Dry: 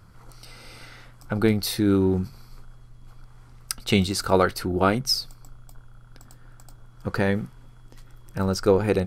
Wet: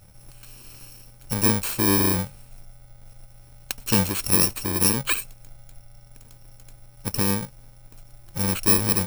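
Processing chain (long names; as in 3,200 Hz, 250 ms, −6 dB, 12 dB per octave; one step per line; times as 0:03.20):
samples in bit-reversed order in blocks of 64 samples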